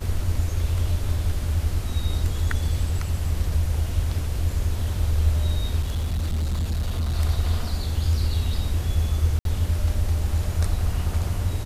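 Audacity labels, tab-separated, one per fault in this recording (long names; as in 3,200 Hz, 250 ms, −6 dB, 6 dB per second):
5.810000	7.170000	clipping −21 dBFS
9.390000	9.450000	drop-out 62 ms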